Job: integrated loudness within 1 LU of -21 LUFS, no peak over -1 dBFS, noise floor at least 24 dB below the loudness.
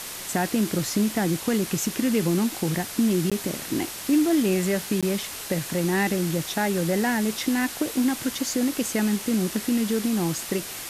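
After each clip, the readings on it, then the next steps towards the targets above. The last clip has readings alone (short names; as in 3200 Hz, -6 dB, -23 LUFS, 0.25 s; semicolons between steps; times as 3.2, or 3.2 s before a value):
dropouts 2; longest dropout 16 ms; noise floor -36 dBFS; noise floor target -49 dBFS; loudness -24.5 LUFS; peak -11.5 dBFS; loudness target -21.0 LUFS
-> interpolate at 3.3/5.01, 16 ms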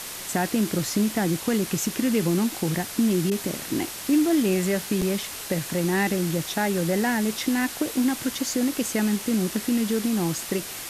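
dropouts 0; noise floor -36 dBFS; noise floor target -49 dBFS
-> denoiser 13 dB, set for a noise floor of -36 dBFS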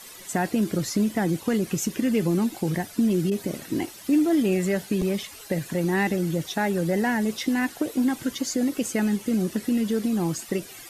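noise floor -44 dBFS; noise floor target -49 dBFS
-> denoiser 6 dB, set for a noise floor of -44 dBFS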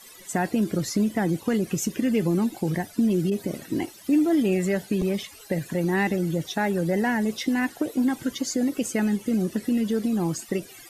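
noise floor -47 dBFS; noise floor target -50 dBFS
-> denoiser 6 dB, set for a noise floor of -47 dBFS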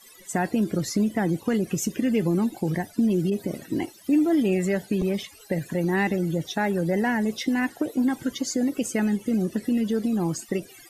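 noise floor -50 dBFS; loudness -25.5 LUFS; peak -12.5 dBFS; loudness target -21.0 LUFS
-> gain +4.5 dB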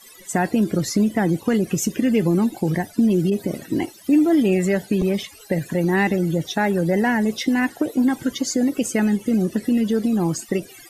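loudness -21.0 LUFS; peak -8.0 dBFS; noise floor -46 dBFS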